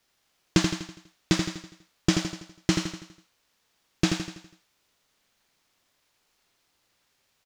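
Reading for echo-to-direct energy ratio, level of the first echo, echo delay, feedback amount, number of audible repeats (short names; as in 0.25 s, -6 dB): -4.5 dB, -5.5 dB, 82 ms, 48%, 5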